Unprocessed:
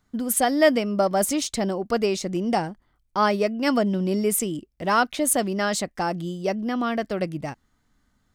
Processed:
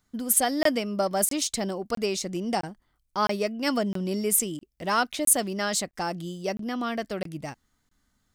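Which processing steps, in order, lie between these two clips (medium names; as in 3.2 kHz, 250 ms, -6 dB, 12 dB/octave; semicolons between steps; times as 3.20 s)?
treble shelf 3.2 kHz +8 dB; crackling interface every 0.66 s, samples 1024, zero, from 0.63 s; trim -5 dB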